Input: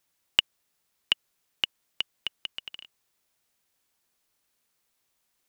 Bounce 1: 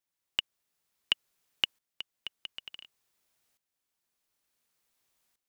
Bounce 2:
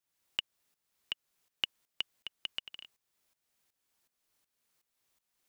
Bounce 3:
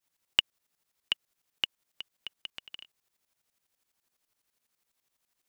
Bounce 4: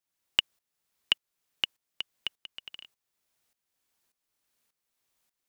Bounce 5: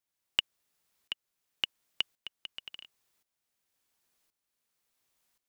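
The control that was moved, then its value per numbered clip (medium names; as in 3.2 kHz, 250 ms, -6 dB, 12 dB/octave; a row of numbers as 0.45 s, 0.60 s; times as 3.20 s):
tremolo, rate: 0.56 Hz, 2.7 Hz, 12 Hz, 1.7 Hz, 0.93 Hz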